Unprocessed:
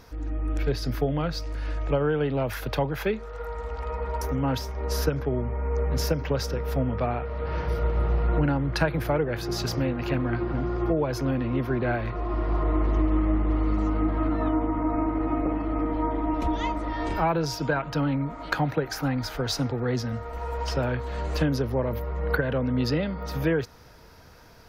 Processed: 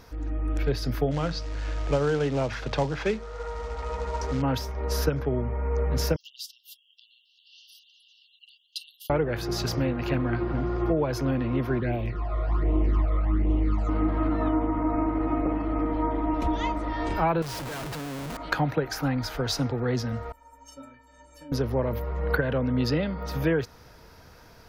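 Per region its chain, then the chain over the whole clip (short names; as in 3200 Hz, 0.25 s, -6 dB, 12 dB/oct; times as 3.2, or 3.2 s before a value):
1.11–4.42 notches 60/120/180/240/300 Hz + short-mantissa float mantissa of 2-bit + LPF 6700 Hz 24 dB/oct
6.16–9.1 brick-wall FIR high-pass 2700 Hz + dynamic EQ 5800 Hz, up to -7 dB, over -54 dBFS, Q 3.2
11.8–13.89 high shelf 12000 Hz +9 dB + phaser stages 12, 1.3 Hz, lowest notch 270–1600 Hz
17.42–18.37 LPF 5100 Hz + compressor 20:1, threshold -29 dBFS + Schmitt trigger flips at -45 dBFS
20.32–21.52 resonant high shelf 5600 Hz +7.5 dB, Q 3 + metallic resonator 270 Hz, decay 0.53 s, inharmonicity 0.03
whole clip: dry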